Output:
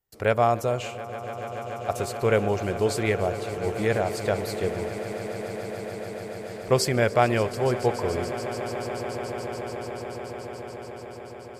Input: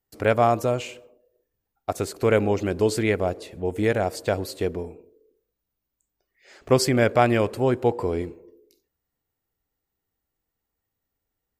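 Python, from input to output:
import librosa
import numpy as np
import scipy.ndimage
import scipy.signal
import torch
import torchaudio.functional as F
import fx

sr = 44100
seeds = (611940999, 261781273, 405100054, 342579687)

y = fx.peak_eq(x, sr, hz=280.0, db=-11.5, octaves=0.34)
y = fx.echo_swell(y, sr, ms=144, loudest=8, wet_db=-17.0)
y = F.gain(torch.from_numpy(y), -1.5).numpy()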